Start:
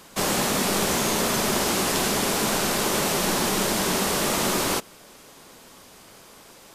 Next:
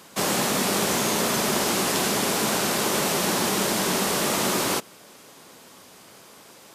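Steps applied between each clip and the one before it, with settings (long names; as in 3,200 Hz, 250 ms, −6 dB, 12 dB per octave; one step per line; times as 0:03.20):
high-pass filter 100 Hz 12 dB per octave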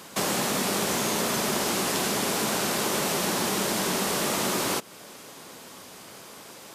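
downward compressor 2 to 1, threshold −32 dBFS, peak gain reduction 7 dB
level +3.5 dB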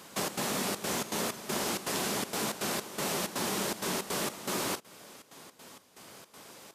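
gate pattern "xxx.xxxx.xx.xx.." 161 BPM −12 dB
level −5.5 dB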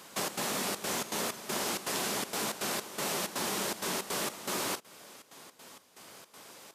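low-shelf EQ 320 Hz −5.5 dB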